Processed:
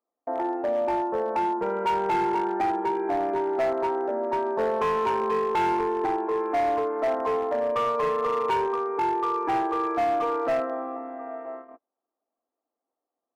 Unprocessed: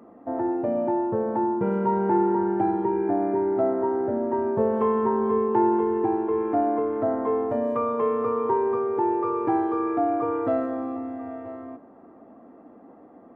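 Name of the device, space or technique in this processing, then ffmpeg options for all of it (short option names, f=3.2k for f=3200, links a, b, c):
walkie-talkie: -filter_complex "[0:a]asettb=1/sr,asplit=3[a][b][c];[a]atrim=end=8.664[d];[b]atrim=start=8.66:end=9.5,asetpts=PTS-STARTPTS,afade=t=in:d=0.004:c=qsin,afade=t=out:st=0.836:d=0.004:c=qsin,equalizer=f=560:t=o:w=0.36:g=-10.5[e];[c]atrim=start=9.496[f];[d][e]acrossfade=d=0.004:c1=hsin:c2=qsin[g];[g][f]acrossfade=d=0.004:c1=qsin:c2=hsin,highpass=550,lowpass=2.3k,asoftclip=type=hard:threshold=-24.5dB,agate=range=-37dB:threshold=-42dB:ratio=16:detection=peak,volume=4dB"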